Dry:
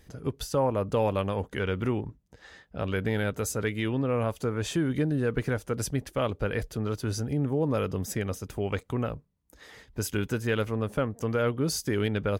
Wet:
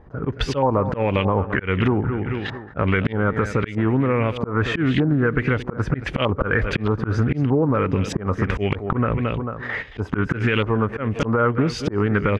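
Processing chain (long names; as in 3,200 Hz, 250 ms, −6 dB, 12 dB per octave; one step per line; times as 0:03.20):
noise gate −48 dBFS, range −16 dB
on a send: repeating echo 222 ms, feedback 31%, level −15 dB
on the sum: volume swells 376 ms
downward compressor 10 to 1, threshold −42 dBFS, peak gain reduction 19.5 dB
auto-filter low-pass saw up 1.6 Hz 930–3,300 Hz
dynamic equaliser 740 Hz, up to −4 dB, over −57 dBFS, Q 1.2
boost into a limiter +33.5 dB
highs frequency-modulated by the lows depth 0.18 ms
level −7.5 dB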